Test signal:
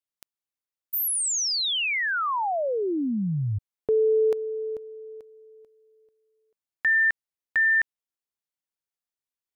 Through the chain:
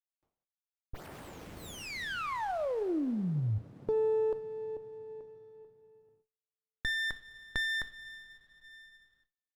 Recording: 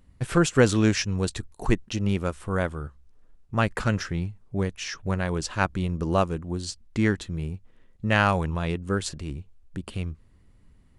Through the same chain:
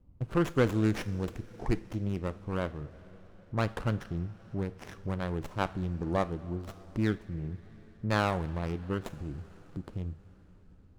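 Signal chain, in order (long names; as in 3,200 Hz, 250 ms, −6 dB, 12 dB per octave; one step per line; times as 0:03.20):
adaptive Wiener filter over 25 samples
coupled-rooms reverb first 0.36 s, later 4.4 s, from −17 dB, DRR 12.5 dB
in parallel at −0.5 dB: downward compressor, threshold −37 dBFS
on the sum: noise gate with hold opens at −49 dBFS, closes at −52 dBFS, hold 183 ms, range −36 dB
windowed peak hold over 9 samples
level −7.5 dB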